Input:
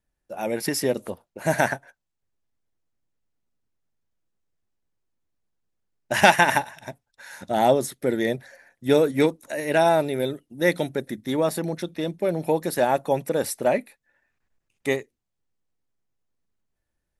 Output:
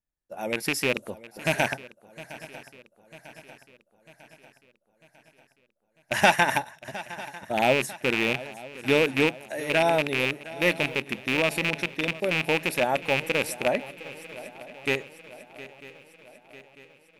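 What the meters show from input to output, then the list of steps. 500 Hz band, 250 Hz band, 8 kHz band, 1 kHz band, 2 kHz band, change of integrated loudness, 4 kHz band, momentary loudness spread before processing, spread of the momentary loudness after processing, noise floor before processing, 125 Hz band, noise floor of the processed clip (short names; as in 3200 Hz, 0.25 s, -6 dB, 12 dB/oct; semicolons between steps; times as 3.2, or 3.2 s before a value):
-4.0 dB, -4.0 dB, -3.5 dB, -4.0 dB, +1.5 dB, -2.0 dB, +2.5 dB, 13 LU, 19 LU, -80 dBFS, -3.0 dB, -71 dBFS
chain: rattling part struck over -28 dBFS, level -9 dBFS; gate -39 dBFS, range -8 dB; on a send: swung echo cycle 0.947 s, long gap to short 3:1, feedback 53%, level -17.5 dB; on the sum: gain -4 dB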